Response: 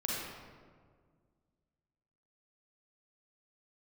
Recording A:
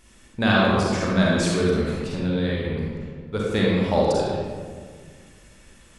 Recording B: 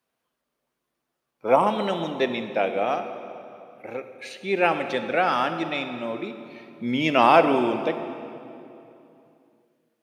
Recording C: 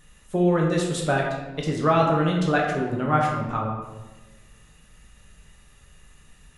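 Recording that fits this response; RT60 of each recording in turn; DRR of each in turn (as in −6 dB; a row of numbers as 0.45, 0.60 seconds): A; 1.8, 2.8, 1.2 seconds; −5.0, 8.5, −2.0 decibels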